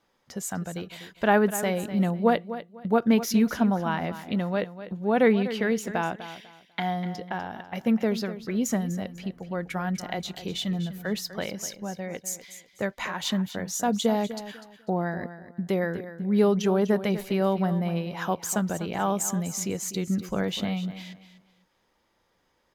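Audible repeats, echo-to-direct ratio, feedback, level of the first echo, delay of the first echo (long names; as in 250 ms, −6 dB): 2, −12.5 dB, 25%, −13.0 dB, 248 ms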